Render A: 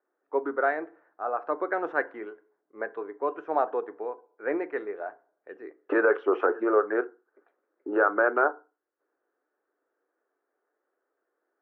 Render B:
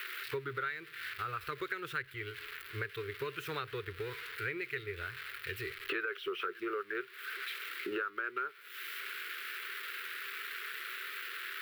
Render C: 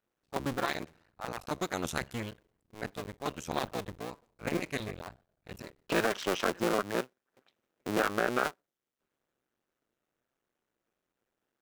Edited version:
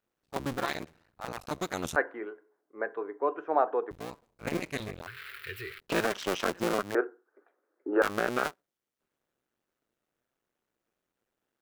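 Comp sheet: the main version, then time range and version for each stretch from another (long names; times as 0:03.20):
C
0:01.96–0:03.91: punch in from A
0:05.07–0:05.80: punch in from B
0:06.95–0:08.02: punch in from A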